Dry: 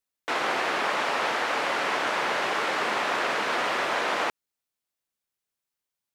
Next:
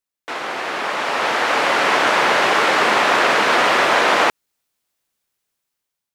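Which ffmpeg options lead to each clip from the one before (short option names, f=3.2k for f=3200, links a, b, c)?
-af "dynaudnorm=f=500:g=5:m=12.5dB"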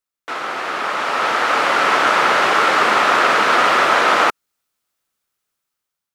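-af "equalizer=f=1.3k:t=o:w=0.31:g=7.5,volume=-1dB"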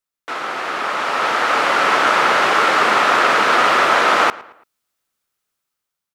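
-filter_complex "[0:a]asplit=2[a][b];[b]adelay=112,lowpass=f=3.2k:p=1,volume=-19.5dB,asplit=2[c][d];[d]adelay=112,lowpass=f=3.2k:p=1,volume=0.42,asplit=2[e][f];[f]adelay=112,lowpass=f=3.2k:p=1,volume=0.42[g];[a][c][e][g]amix=inputs=4:normalize=0"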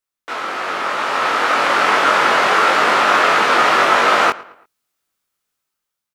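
-filter_complex "[0:a]asplit=2[a][b];[b]adelay=21,volume=-3dB[c];[a][c]amix=inputs=2:normalize=0,volume=-1dB"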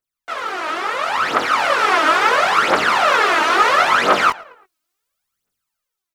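-af "aphaser=in_gain=1:out_gain=1:delay=3.3:decay=0.69:speed=0.73:type=triangular,volume=-4dB"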